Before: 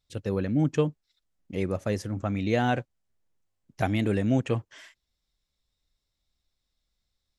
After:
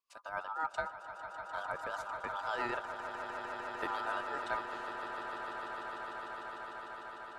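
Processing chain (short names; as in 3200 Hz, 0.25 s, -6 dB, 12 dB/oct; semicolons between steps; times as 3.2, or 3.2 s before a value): ring modulator 1100 Hz; rotary speaker horn 7.5 Hz, later 1.2 Hz, at 3.51; swelling echo 0.15 s, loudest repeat 8, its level -11.5 dB; gain -6.5 dB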